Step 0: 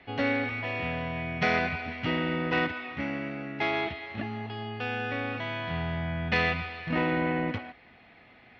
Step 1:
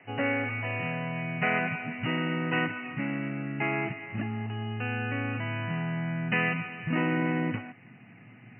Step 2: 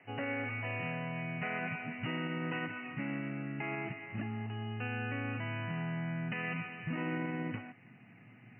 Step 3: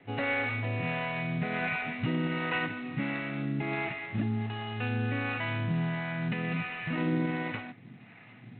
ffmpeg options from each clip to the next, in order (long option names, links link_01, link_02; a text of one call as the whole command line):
ffmpeg -i in.wav -filter_complex "[0:a]afftfilt=real='re*between(b*sr/4096,100,3000)':imag='im*between(b*sr/4096,100,3000)':win_size=4096:overlap=0.75,asubboost=boost=8:cutoff=190,acrossover=split=290|2300[link_01][link_02][link_03];[link_01]acompressor=threshold=-34dB:ratio=6[link_04];[link_04][link_02][link_03]amix=inputs=3:normalize=0" out.wav
ffmpeg -i in.wav -af "alimiter=limit=-22dB:level=0:latency=1:release=84,volume=-5.5dB" out.wav
ffmpeg -i in.wav -filter_complex "[0:a]acontrast=36,acrossover=split=500[link_01][link_02];[link_01]aeval=exprs='val(0)*(1-0.7/2+0.7/2*cos(2*PI*1.4*n/s))':channel_layout=same[link_03];[link_02]aeval=exprs='val(0)*(1-0.7/2-0.7/2*cos(2*PI*1.4*n/s))':channel_layout=same[link_04];[link_03][link_04]amix=inputs=2:normalize=0,volume=4dB" -ar 8000 -c:a adpcm_g726 -b:a 24k out.wav